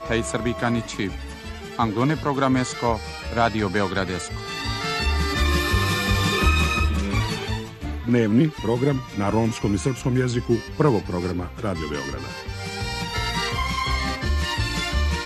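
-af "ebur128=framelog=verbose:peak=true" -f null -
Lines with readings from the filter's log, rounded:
Integrated loudness:
  I:         -23.5 LUFS
  Threshold: -33.6 LUFS
Loudness range:
  LRA:         3.8 LU
  Threshold: -43.4 LUFS
  LRA low:   -25.7 LUFS
  LRA high:  -21.9 LUFS
True peak:
  Peak:       -6.4 dBFS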